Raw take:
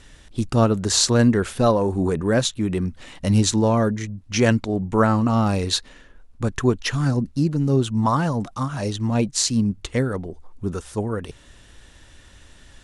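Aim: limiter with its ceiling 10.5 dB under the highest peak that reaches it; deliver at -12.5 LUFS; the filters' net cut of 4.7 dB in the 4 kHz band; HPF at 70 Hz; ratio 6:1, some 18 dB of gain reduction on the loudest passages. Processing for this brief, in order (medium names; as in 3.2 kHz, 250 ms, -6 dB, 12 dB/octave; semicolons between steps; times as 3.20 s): high-pass 70 Hz; peaking EQ 4 kHz -5.5 dB; compression 6:1, threshold -33 dBFS; trim +25 dB; peak limiter -2 dBFS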